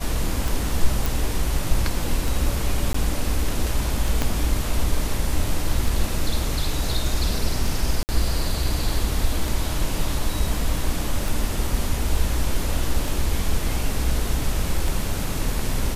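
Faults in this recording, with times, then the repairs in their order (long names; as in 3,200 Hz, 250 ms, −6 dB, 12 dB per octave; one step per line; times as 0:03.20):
scratch tick 33 1/3 rpm
0:01.06: click
0:02.93–0:02.94: drop-out 14 ms
0:04.22: click −7 dBFS
0:08.03–0:08.09: drop-out 59 ms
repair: click removal
repair the gap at 0:02.93, 14 ms
repair the gap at 0:08.03, 59 ms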